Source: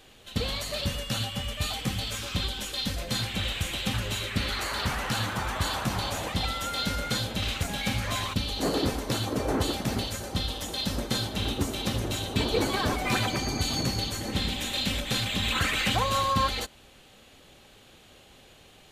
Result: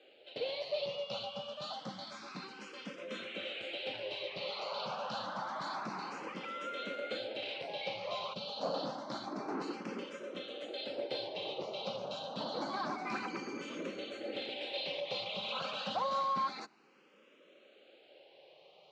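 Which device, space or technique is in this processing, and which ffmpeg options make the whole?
barber-pole phaser into a guitar amplifier: -filter_complex "[0:a]asplit=2[link_01][link_02];[link_02]afreqshift=0.28[link_03];[link_01][link_03]amix=inputs=2:normalize=1,asoftclip=type=tanh:threshold=-23dB,highpass=frequency=210:width=0.5412,highpass=frequency=210:width=1.3066,highpass=110,equalizer=frequency=140:width_type=q:width=4:gain=3,equalizer=frequency=250:width_type=q:width=4:gain=-7,equalizer=frequency=560:width_type=q:width=4:gain=8,equalizer=frequency=1800:width_type=q:width=4:gain=-8,equalizer=frequency=3500:width_type=q:width=4:gain=-5,lowpass=frequency=4400:width=0.5412,lowpass=frequency=4400:width=1.3066,volume=-4dB"

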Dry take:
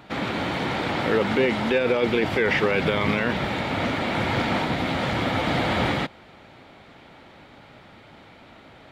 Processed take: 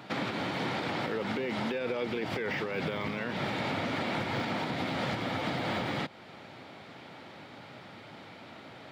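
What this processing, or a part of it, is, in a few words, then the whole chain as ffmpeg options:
broadcast voice chain: -af "highpass=frequency=98:width=0.5412,highpass=frequency=98:width=1.3066,deesser=0.85,acompressor=threshold=-25dB:ratio=6,equalizer=frequency=5000:width_type=o:width=0.43:gain=4,alimiter=limit=-23dB:level=0:latency=1:release=331"

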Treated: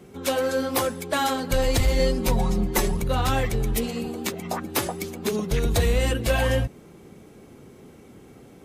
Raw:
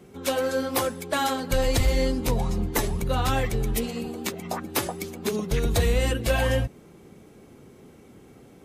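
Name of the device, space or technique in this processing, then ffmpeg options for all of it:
parallel distortion: -filter_complex "[0:a]asplit=2[link_01][link_02];[link_02]asoftclip=type=hard:threshold=-27.5dB,volume=-10.5dB[link_03];[link_01][link_03]amix=inputs=2:normalize=0,asettb=1/sr,asplit=3[link_04][link_05][link_06];[link_04]atrim=end=1.994[link_07];[link_05]atrim=start=1.99:end=2.97,asetpts=PTS-STARTPTS,afade=type=in:duration=0.004:curve=qsin,afade=type=out:start_time=0.976:duration=0.004:curve=qsin,aecho=1:1:5.4:0.63,atrim=end_sample=43218[link_08];[link_06]atrim=start=2.966[link_09];[link_07][link_08]acrossfade=duration=0.004:curve1=hsin:curve2=qsin[link_10];[link_10][link_09]acrossfade=duration=0.004:curve1=qsin:curve2=hsin"

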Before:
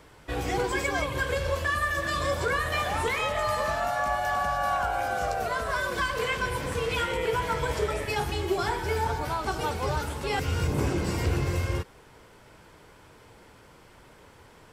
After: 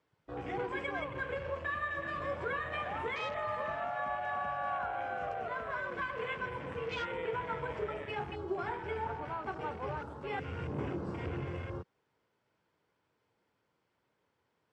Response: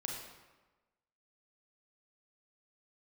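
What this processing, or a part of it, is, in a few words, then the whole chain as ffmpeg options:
over-cleaned archive recording: -af "highpass=110,lowpass=5700,afwtdn=0.0158,volume=-8.5dB"

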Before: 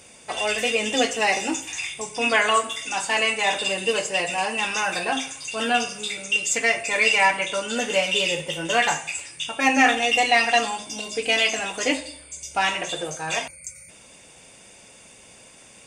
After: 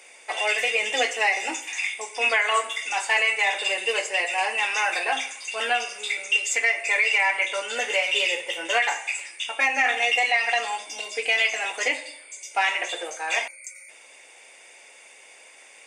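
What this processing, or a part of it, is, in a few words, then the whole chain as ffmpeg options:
laptop speaker: -af "highpass=frequency=370:width=0.5412,highpass=frequency=370:width=1.3066,equalizer=frequency=820:width_type=o:width=0.45:gain=4,equalizer=frequency=2100:width_type=o:width=0.59:gain=11,alimiter=limit=-8dB:level=0:latency=1:release=189,volume=-3.5dB"

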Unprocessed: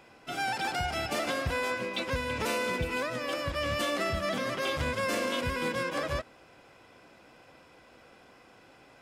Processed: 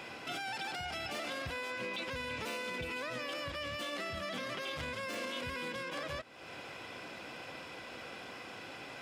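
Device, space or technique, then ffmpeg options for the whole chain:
broadcast voice chain: -af "highpass=77,deesser=0.7,acompressor=threshold=-47dB:ratio=4,equalizer=frequency=3100:width_type=o:width=1.7:gain=6,alimiter=level_in=13.5dB:limit=-24dB:level=0:latency=1:release=10,volume=-13.5dB,volume=7.5dB"

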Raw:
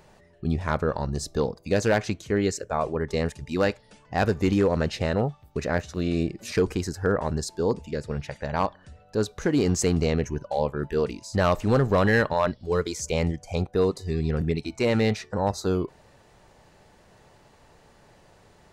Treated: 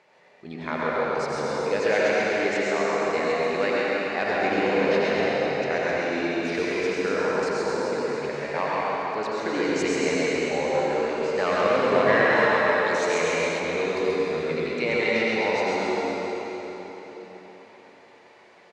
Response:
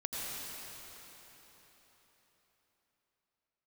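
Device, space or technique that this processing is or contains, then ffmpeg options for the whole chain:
station announcement: -filter_complex "[0:a]highpass=360,lowpass=4900,equalizer=frequency=2200:width_type=o:width=0.4:gain=9,aecho=1:1:134.1|247.8:0.631|0.282[link_01];[1:a]atrim=start_sample=2205[link_02];[link_01][link_02]afir=irnorm=-1:irlink=0,asettb=1/sr,asplit=3[link_03][link_04][link_05];[link_03]atrim=end=12.354[link_06];[link_04]atrim=start=12.35:end=13.6,asetpts=PTS-STARTPTS,afade=type=in:duration=0.004:curve=qsin,afade=type=out:start_time=1.246:duration=0.004:curve=qsin,equalizer=frequency=9200:width_type=o:width=1.4:gain=4.5[link_07];[link_05]atrim=start=13.596[link_08];[link_06][link_07]acrossfade=duration=0.004:curve1=hsin:curve2=qsin[link_09];[link_09][link_08]acrossfade=duration=0.004:curve1=qsin:curve2=hsin,volume=-1.5dB"

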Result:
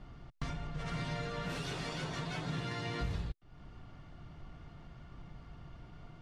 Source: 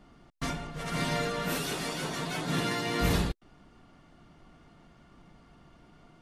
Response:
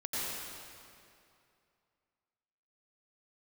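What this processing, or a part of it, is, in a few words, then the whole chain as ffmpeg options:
jukebox: -af "lowpass=5700,lowshelf=frequency=160:width_type=q:width=1.5:gain=8,acompressor=threshold=-38dB:ratio=4,volume=1dB"

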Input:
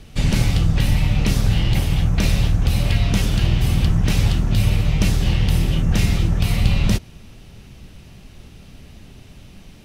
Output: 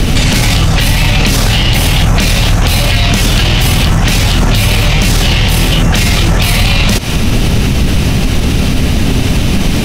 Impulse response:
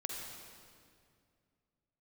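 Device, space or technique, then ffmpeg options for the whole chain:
mastering chain: -filter_complex "[0:a]equalizer=frequency=260:width_type=o:width=0.29:gain=4,acrossover=split=490|3000[link_01][link_02][link_03];[link_01]acompressor=threshold=-29dB:ratio=4[link_04];[link_02]acompressor=threshold=-37dB:ratio=4[link_05];[link_03]acompressor=threshold=-35dB:ratio=4[link_06];[link_04][link_05][link_06]amix=inputs=3:normalize=0,acompressor=threshold=-32dB:ratio=2.5,asoftclip=type=tanh:threshold=-23dB,alimiter=level_in=35.5dB:limit=-1dB:release=50:level=0:latency=1,volume=-1dB"

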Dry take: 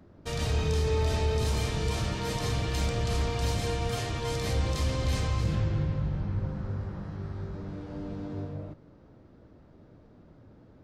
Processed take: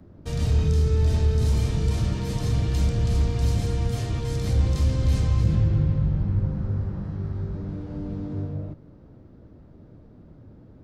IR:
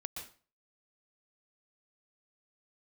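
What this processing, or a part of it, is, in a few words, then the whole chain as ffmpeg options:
one-band saturation: -filter_complex "[0:a]lowshelf=frequency=430:gain=9.5,acrossover=split=340|3800[link_01][link_02][link_03];[link_02]asoftclip=type=tanh:threshold=-35dB[link_04];[link_01][link_04][link_03]amix=inputs=3:normalize=0,volume=-1.5dB"

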